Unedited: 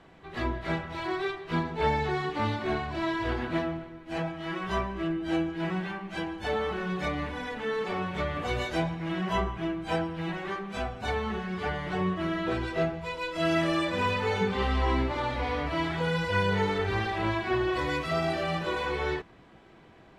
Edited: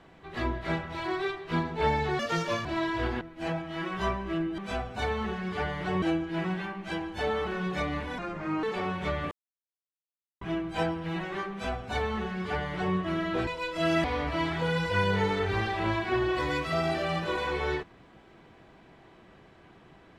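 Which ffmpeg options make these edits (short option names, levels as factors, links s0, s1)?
-filter_complex "[0:a]asplit=12[s0][s1][s2][s3][s4][s5][s6][s7][s8][s9][s10][s11];[s0]atrim=end=2.194[s12];[s1]atrim=start=2.19:end=2.91,asetpts=PTS-STARTPTS,asetrate=68796,aresample=44100[s13];[s2]atrim=start=2.906:end=3.472[s14];[s3]atrim=start=3.908:end=5.282[s15];[s4]atrim=start=10.638:end=12.082[s16];[s5]atrim=start=5.278:end=7.444[s17];[s6]atrim=start=7.44:end=7.76,asetpts=PTS-STARTPTS,asetrate=31311,aresample=44100,atrim=end_sample=19876,asetpts=PTS-STARTPTS[s18];[s7]atrim=start=7.756:end=8.44,asetpts=PTS-STARTPTS,afade=t=out:st=0.68:d=0.004:c=hsin[s19];[s8]atrim=start=8.44:end=9.54,asetpts=PTS-STARTPTS,volume=0[s20];[s9]atrim=start=9.54:end=12.602,asetpts=PTS-STARTPTS,afade=t=in:d=0.004:c=hsin[s21];[s10]atrim=start=13.068:end=13.642[s22];[s11]atrim=start=15.428[s23];[s12][s13]acrossfade=d=0.004:c1=hsin:c2=hsin[s24];[s24][s14]acrossfade=d=0.004:c1=hsin:c2=hsin[s25];[s25][s15]acrossfade=d=0.004:c1=hsin:c2=hsin[s26];[s26][s16]acrossfade=d=0.004:c1=hsin:c2=hsin[s27];[s27][s17]acrossfade=d=0.004:c1=hsin:c2=hsin[s28];[s28][s18]acrossfade=d=0.004:c1=hsin:c2=hsin[s29];[s19][s20][s21]concat=n=3:v=0:a=1[s30];[s29][s30]acrossfade=d=0.004:c1=hsin:c2=hsin[s31];[s31][s22]acrossfade=d=0.004:c1=hsin:c2=hsin[s32];[s32][s23]acrossfade=d=0.004:c1=hsin:c2=hsin"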